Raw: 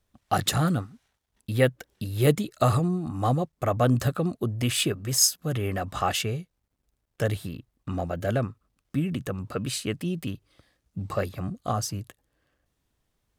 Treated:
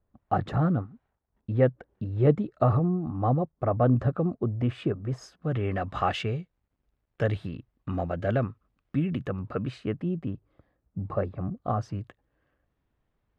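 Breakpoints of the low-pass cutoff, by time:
5.20 s 1.1 kHz
5.75 s 2.6 kHz
9.12 s 2.6 kHz
10.23 s 1.1 kHz
11.58 s 1.1 kHz
12.00 s 2.1 kHz

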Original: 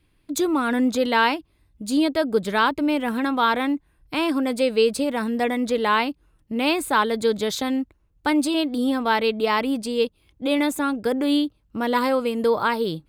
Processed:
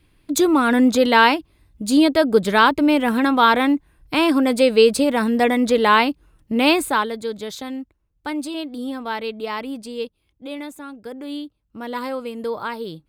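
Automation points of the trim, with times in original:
6.75 s +5.5 dB
7.21 s -6 dB
10.01 s -6 dB
10.84 s -12.5 dB
12.06 s -6 dB

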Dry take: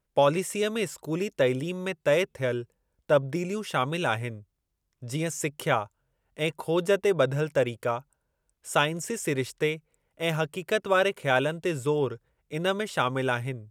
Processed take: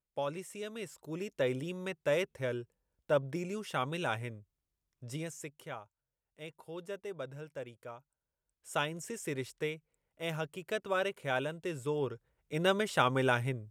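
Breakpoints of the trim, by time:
0.68 s -14.5 dB
1.52 s -7.5 dB
5.07 s -7.5 dB
5.63 s -18.5 dB
7.97 s -18.5 dB
8.79 s -9.5 dB
11.78 s -9.5 dB
12.67 s -2 dB

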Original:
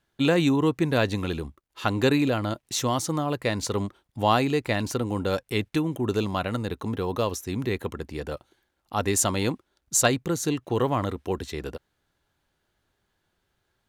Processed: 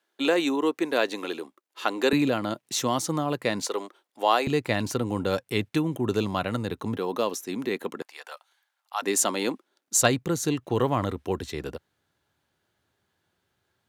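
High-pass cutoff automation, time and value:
high-pass 24 dB/octave
300 Hz
from 2.13 s 140 Hz
from 3.62 s 350 Hz
from 4.47 s 96 Hz
from 6.97 s 200 Hz
from 8.02 s 790 Hz
from 9.02 s 230 Hz
from 10.02 s 74 Hz

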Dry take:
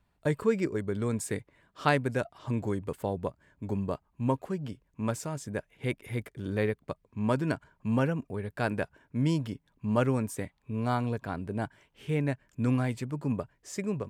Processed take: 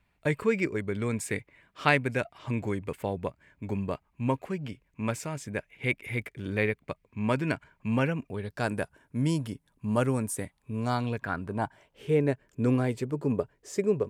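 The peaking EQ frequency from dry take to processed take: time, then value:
peaking EQ +10.5 dB 0.68 oct
8.26 s 2.3 kHz
8.78 s 10 kHz
10.75 s 10 kHz
11.25 s 1.7 kHz
12.11 s 420 Hz

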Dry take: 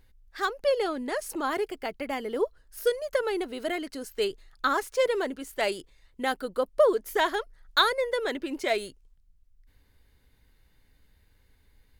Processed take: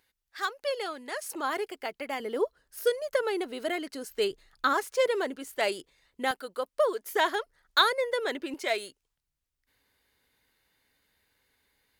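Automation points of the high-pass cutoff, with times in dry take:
high-pass 6 dB/octave
1.1 kHz
from 1.22 s 510 Hz
from 2.20 s 210 Hz
from 4.10 s 81 Hz
from 4.73 s 240 Hz
from 6.31 s 850 Hz
from 7.06 s 290 Hz
from 8.54 s 610 Hz

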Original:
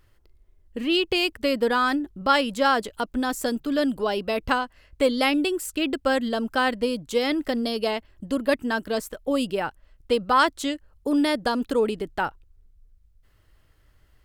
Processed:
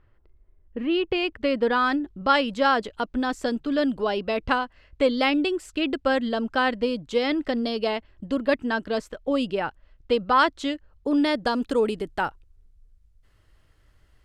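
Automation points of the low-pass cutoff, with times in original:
0.88 s 1.9 kHz
1.97 s 4.6 kHz
11.11 s 4.6 kHz
11.92 s 11 kHz

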